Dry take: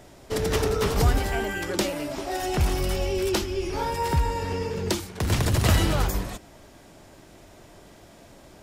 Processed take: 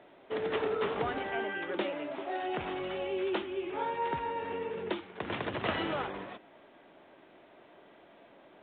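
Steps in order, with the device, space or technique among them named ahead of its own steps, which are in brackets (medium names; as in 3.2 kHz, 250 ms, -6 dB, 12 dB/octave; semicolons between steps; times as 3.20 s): telephone (band-pass 300–3300 Hz; trim -5 dB; A-law 64 kbps 8 kHz)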